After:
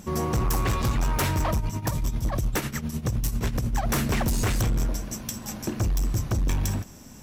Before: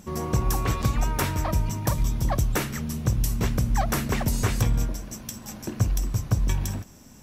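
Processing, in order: 1.54–3.89 s: tremolo triangle 10 Hz, depth 80%; hard clipper -24 dBFS, distortion -9 dB; trim +3.5 dB

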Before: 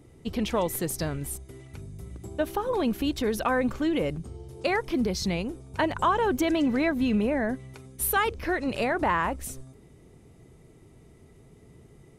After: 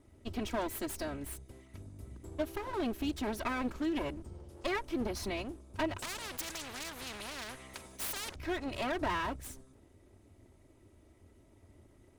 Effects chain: comb filter that takes the minimum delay 3.1 ms; peaking EQ 91 Hz +7.5 dB 0.65 oct; 5.98–8.36 s: spectrum-flattening compressor 4:1; trim -7.5 dB

